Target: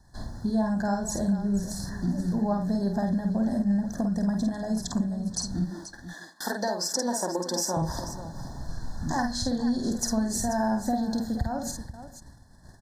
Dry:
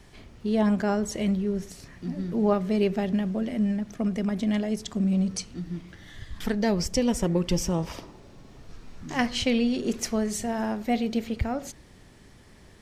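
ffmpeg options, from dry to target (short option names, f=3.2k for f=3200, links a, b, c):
-filter_complex "[0:a]asettb=1/sr,asplit=3[a][b][c];[a]atrim=end=5.654[d];[b]atrim=start=5.65:end=7.77,asetpts=PTS-STARTPTS,afade=t=in:d=0.004:c=qsin,afade=t=out:st=2.116:d=0.004:c=qsin,highpass=f=310:w=0.5412,highpass=f=310:w=1.3066[e];[c]atrim=start=7.766[f];[d][e]acrossfade=d=0.004:c1=hsin:c2=qsin[g];[g][f]acrossfade=d=0.004:c1=qsin:c2=hsin,agate=range=-16dB:threshold=-49dB:ratio=16:detection=peak,aecho=1:1:1.2:0.66,acompressor=threshold=-33dB:ratio=5,asuperstop=centerf=2600:order=8:qfactor=1.2,aecho=1:1:50|484:0.596|0.237,volume=7dB"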